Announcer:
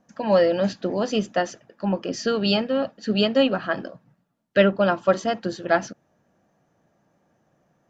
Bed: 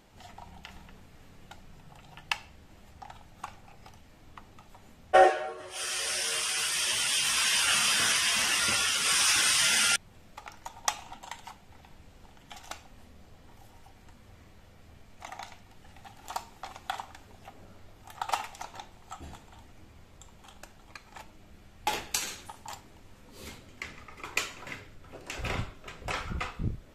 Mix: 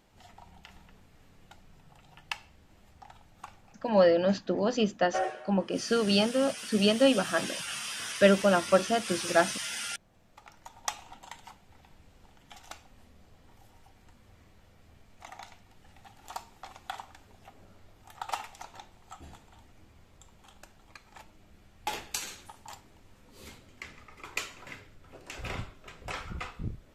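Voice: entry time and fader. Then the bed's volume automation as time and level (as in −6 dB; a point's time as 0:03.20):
3.65 s, −3.5 dB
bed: 0:03.61 −5 dB
0:03.96 −11.5 dB
0:10.03 −11.5 dB
0:10.92 −4 dB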